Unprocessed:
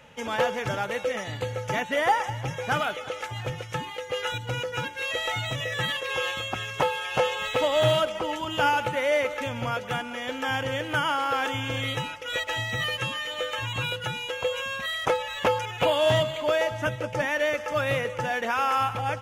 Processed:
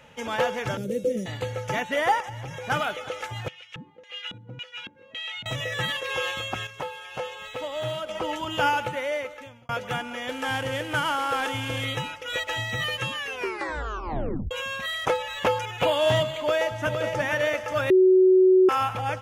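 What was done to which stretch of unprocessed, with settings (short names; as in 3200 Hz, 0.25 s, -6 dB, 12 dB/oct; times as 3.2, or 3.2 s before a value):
0.77–1.26 EQ curve 110 Hz 0 dB, 190 Hz +12 dB, 510 Hz +3 dB, 830 Hz -29 dB, 2000 Hz -18 dB, 9500 Hz +2 dB
2.2–2.7 compressor, threshold -32 dBFS
3.48–5.46 LFO band-pass square 1.8 Hz 210–2900 Hz
6.67–8.09 gain -9 dB
8.67–9.69 fade out
10.29–11.85 CVSD 64 kbps
13.15 tape stop 1.36 s
16.38–17.01 echo throw 0.46 s, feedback 50%, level -6 dB
17.9–18.69 bleep 373 Hz -13 dBFS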